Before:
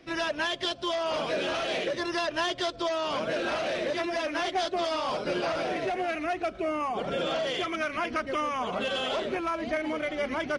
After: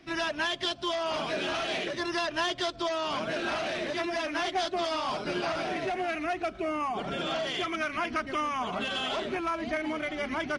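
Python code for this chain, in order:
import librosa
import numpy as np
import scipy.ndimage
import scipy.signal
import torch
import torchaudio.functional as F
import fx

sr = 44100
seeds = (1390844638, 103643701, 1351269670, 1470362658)

y = fx.peak_eq(x, sr, hz=510.0, db=-13.5, octaves=0.26)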